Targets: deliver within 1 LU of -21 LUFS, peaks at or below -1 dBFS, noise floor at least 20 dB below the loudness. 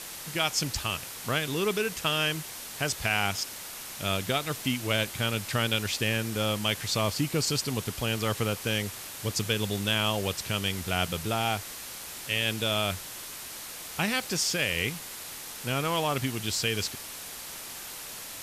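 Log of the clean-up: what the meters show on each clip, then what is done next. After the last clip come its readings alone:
noise floor -41 dBFS; noise floor target -49 dBFS; loudness -29.0 LUFS; peak -12.5 dBFS; loudness target -21.0 LUFS
-> noise print and reduce 8 dB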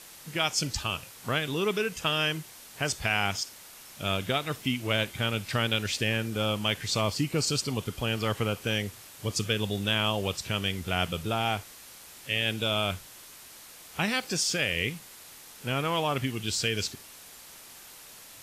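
noise floor -49 dBFS; loudness -29.0 LUFS; peak -12.5 dBFS; loudness target -21.0 LUFS
-> gain +8 dB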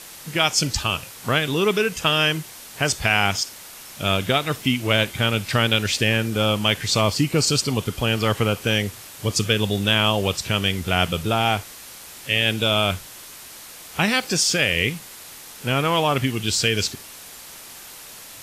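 loudness -21.0 LUFS; peak -4.5 dBFS; noise floor -41 dBFS

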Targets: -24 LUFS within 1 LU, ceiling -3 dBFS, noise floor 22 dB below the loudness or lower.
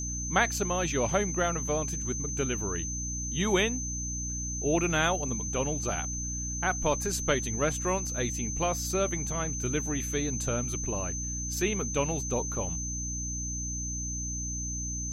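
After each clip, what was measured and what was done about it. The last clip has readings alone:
hum 60 Hz; harmonics up to 300 Hz; hum level -34 dBFS; steady tone 6200 Hz; tone level -34 dBFS; loudness -29.5 LUFS; peak -10.0 dBFS; loudness target -24.0 LUFS
-> notches 60/120/180/240/300 Hz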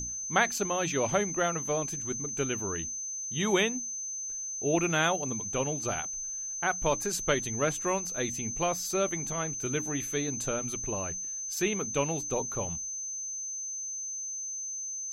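hum none; steady tone 6200 Hz; tone level -34 dBFS
-> notch 6200 Hz, Q 30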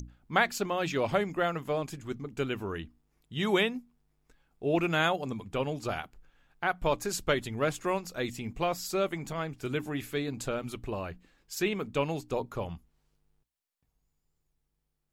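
steady tone none; loudness -32.0 LUFS; peak -10.0 dBFS; loudness target -24.0 LUFS
-> gain +8 dB; limiter -3 dBFS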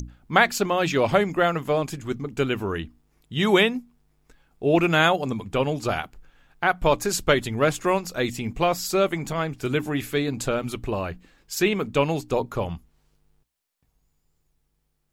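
loudness -24.0 LUFS; peak -3.0 dBFS; noise floor -72 dBFS

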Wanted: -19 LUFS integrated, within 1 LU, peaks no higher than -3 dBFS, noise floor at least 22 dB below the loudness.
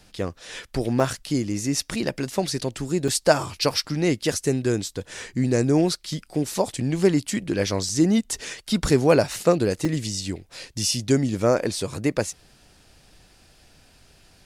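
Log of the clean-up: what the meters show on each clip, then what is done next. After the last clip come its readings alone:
dropouts 6; longest dropout 2.8 ms; loudness -23.5 LUFS; peak -3.5 dBFS; loudness target -19.0 LUFS
-> interpolate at 1/1.81/3.08/3.71/7.89/9.85, 2.8 ms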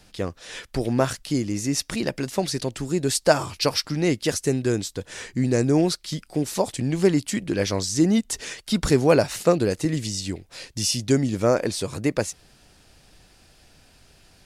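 dropouts 0; loudness -23.5 LUFS; peak -3.5 dBFS; loudness target -19.0 LUFS
-> gain +4.5 dB; limiter -3 dBFS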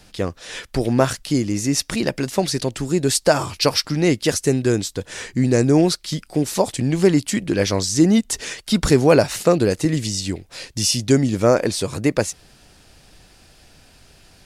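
loudness -19.5 LUFS; peak -3.0 dBFS; noise floor -51 dBFS

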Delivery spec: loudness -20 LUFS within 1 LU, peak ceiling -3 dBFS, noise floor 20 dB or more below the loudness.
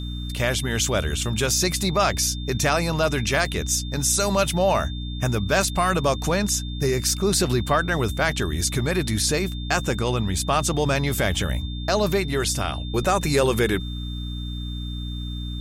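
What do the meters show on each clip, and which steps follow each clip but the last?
hum 60 Hz; harmonics up to 300 Hz; hum level -27 dBFS; steady tone 3600 Hz; tone level -38 dBFS; loudness -23.0 LUFS; peak -7.0 dBFS; loudness target -20.0 LUFS
-> de-hum 60 Hz, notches 5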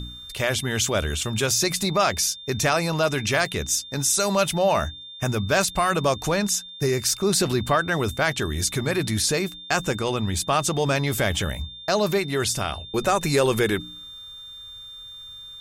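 hum none; steady tone 3600 Hz; tone level -38 dBFS
-> notch 3600 Hz, Q 30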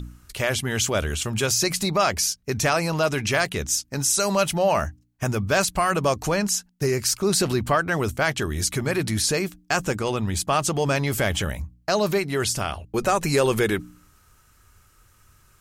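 steady tone none; loudness -23.0 LUFS; peak -8.0 dBFS; loudness target -20.0 LUFS
-> gain +3 dB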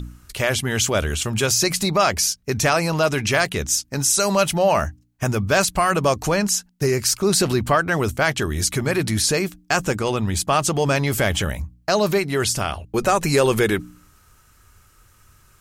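loudness -20.0 LUFS; peak -5.0 dBFS; noise floor -56 dBFS

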